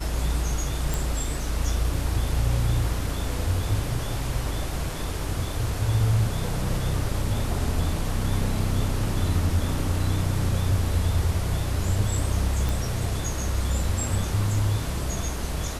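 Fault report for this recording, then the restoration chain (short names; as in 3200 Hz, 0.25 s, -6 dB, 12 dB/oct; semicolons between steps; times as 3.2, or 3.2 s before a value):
0.94 pop
12.69 pop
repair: de-click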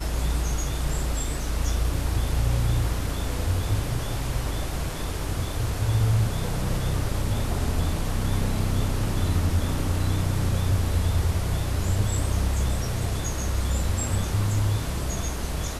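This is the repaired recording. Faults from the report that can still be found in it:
none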